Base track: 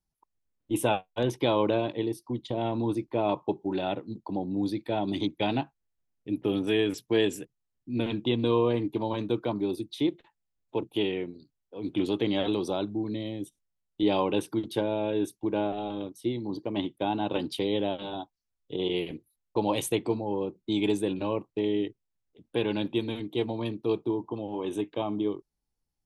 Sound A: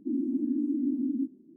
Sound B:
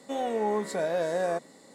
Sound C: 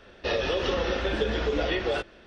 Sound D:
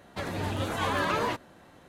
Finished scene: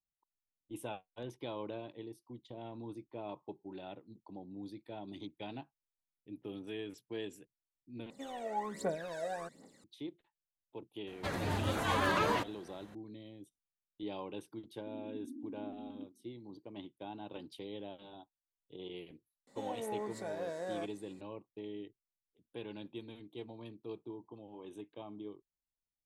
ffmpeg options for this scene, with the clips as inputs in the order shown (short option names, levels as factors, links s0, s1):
-filter_complex "[2:a]asplit=2[s0][s1];[0:a]volume=0.141[s2];[s0]aphaser=in_gain=1:out_gain=1:delay=1.6:decay=0.73:speed=1.3:type=triangular[s3];[s2]asplit=2[s4][s5];[s4]atrim=end=8.104[s6];[s3]atrim=end=1.74,asetpts=PTS-STARTPTS,volume=0.251[s7];[s5]atrim=start=9.836[s8];[4:a]atrim=end=1.88,asetpts=PTS-STARTPTS,volume=0.708,afade=t=in:d=0.004:c=hsin,afade=t=out:st=1.876:d=0.004:c=hsin,adelay=11070[s9];[1:a]atrim=end=1.56,asetpts=PTS-STARTPTS,volume=0.126,afade=t=in:d=0.004:c=hsin,afade=t=out:st=1.556:d=0.004:c=hsin,adelay=14800[s10];[s1]atrim=end=1.74,asetpts=PTS-STARTPTS,volume=0.251,afade=t=in:d=0.004:c=hsin,afade=t=out:st=1.736:d=0.004:c=hsin,adelay=19470[s11];[s6][s7]acrossfade=d=0.004:c1=hsin:c2=hsin[s12];[s12][s8]acrossfade=d=0.004:c1=hsin:c2=hsin[s13];[s13][s9][s10][s11]amix=inputs=4:normalize=0"